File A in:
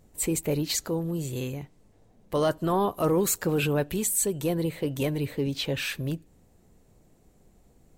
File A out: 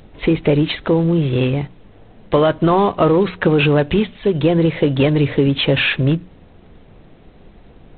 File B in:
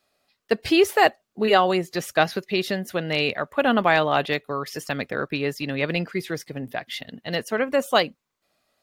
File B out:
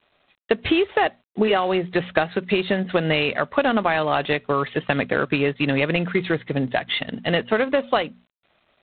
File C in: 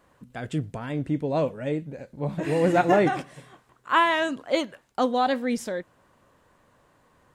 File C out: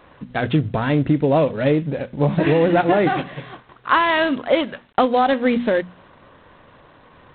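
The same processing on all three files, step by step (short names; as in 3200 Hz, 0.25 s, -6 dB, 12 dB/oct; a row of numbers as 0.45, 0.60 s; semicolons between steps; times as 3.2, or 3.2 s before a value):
notches 60/120/180/240 Hz; compressor 12:1, threshold -26 dBFS; G.726 24 kbps 8000 Hz; normalise peaks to -3 dBFS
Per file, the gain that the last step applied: +16.0, +10.0, +13.5 dB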